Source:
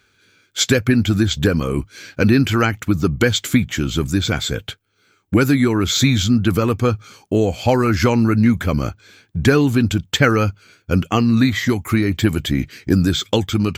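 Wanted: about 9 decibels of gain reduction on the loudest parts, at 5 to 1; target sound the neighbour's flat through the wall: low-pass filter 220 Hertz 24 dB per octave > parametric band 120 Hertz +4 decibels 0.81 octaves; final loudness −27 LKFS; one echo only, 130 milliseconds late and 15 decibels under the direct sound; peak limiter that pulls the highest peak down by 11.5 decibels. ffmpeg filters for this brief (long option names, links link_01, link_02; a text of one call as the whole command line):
ffmpeg -i in.wav -af "acompressor=threshold=-20dB:ratio=5,alimiter=limit=-19dB:level=0:latency=1,lowpass=frequency=220:width=0.5412,lowpass=frequency=220:width=1.3066,equalizer=frequency=120:width_type=o:width=0.81:gain=4,aecho=1:1:130:0.178,volume=3dB" out.wav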